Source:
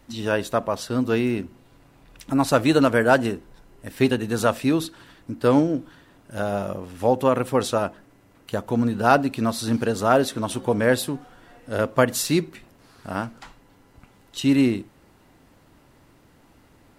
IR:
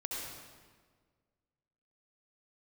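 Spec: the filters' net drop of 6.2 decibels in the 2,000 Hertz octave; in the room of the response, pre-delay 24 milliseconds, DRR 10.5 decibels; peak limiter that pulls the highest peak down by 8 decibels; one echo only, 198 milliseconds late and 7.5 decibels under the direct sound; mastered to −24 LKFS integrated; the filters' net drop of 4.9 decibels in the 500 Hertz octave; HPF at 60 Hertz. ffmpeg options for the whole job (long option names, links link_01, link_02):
-filter_complex "[0:a]highpass=60,equalizer=frequency=500:width_type=o:gain=-5.5,equalizer=frequency=2000:width_type=o:gain=-9,alimiter=limit=-14.5dB:level=0:latency=1,aecho=1:1:198:0.422,asplit=2[link_01][link_02];[1:a]atrim=start_sample=2205,adelay=24[link_03];[link_02][link_03]afir=irnorm=-1:irlink=0,volume=-12.5dB[link_04];[link_01][link_04]amix=inputs=2:normalize=0,volume=3dB"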